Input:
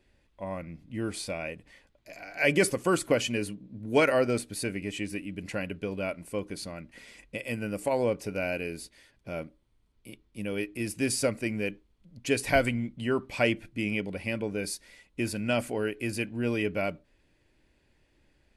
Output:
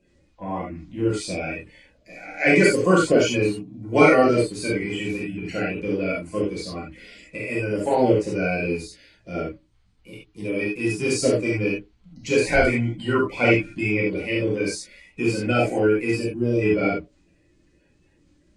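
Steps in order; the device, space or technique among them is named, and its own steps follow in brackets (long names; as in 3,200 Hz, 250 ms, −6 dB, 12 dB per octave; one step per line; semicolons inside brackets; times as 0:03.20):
clip after many re-uploads (low-pass filter 8,500 Hz 24 dB per octave; spectral magnitudes quantised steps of 30 dB)
0:16.17–0:16.62: parametric band 2,000 Hz −12.5 dB 2.3 octaves
reverb whose tail is shaped and stops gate 110 ms flat, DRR −5.5 dB
dynamic equaliser 400 Hz, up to +7 dB, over −37 dBFS, Q 1.6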